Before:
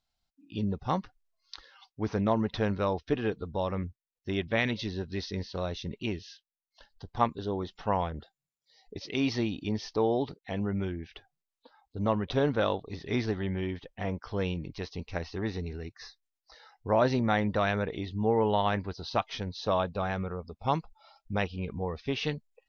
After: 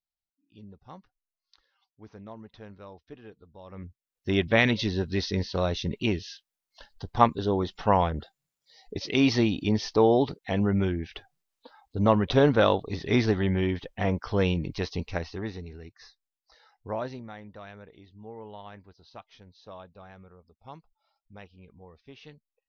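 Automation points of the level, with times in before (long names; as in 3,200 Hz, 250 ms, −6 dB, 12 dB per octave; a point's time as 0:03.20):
0:03.63 −17 dB
0:03.83 −6 dB
0:04.34 +6.5 dB
0:14.96 +6.5 dB
0:15.66 −5 dB
0:16.88 −5 dB
0:17.34 −17 dB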